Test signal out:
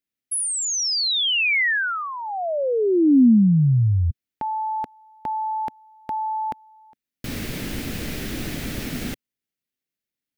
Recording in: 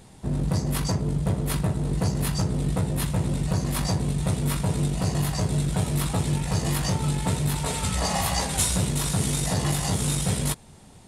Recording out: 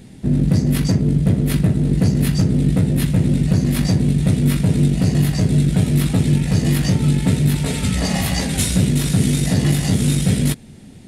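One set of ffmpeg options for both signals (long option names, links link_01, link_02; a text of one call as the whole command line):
ffmpeg -i in.wav -af "equalizer=frequency=125:width_type=o:width=1:gain=3,equalizer=frequency=250:width_type=o:width=1:gain=9,equalizer=frequency=1000:width_type=o:width=1:gain=-11,equalizer=frequency=2000:width_type=o:width=1:gain=4,equalizer=frequency=8000:width_type=o:width=1:gain=-4,volume=4.5dB" out.wav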